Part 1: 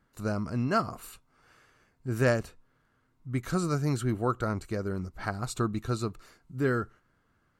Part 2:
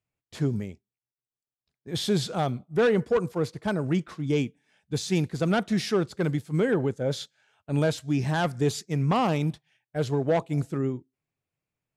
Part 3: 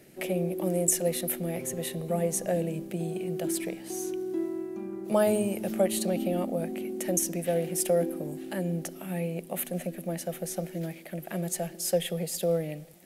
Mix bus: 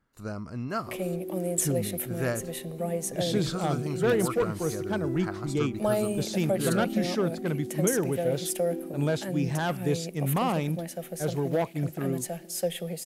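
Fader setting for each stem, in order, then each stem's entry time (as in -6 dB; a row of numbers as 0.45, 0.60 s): -5.0, -3.0, -2.5 dB; 0.00, 1.25, 0.70 s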